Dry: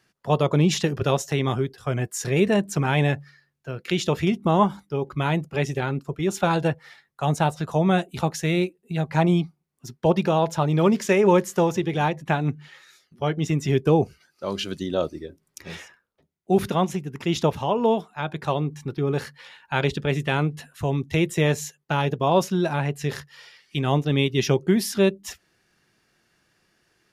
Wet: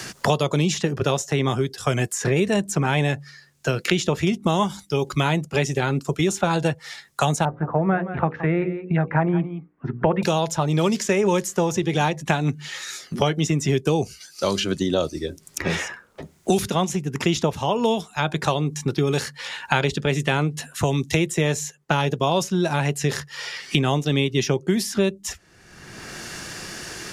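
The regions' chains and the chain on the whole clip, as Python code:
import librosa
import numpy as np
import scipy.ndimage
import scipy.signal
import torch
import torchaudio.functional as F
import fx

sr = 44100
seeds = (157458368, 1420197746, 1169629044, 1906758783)

y = fx.chain(x, sr, fx.steep_lowpass(hz=1700.0, slope=36),
    fx.hum_notches(base_hz=60, count=9),
    fx.echo_single(ms=171, db=-15.5), at=(7.45, 10.23))
y = fx.peak_eq(y, sr, hz=7100.0, db=9.5, octaves=1.3)
y = fx.band_squash(y, sr, depth_pct=100)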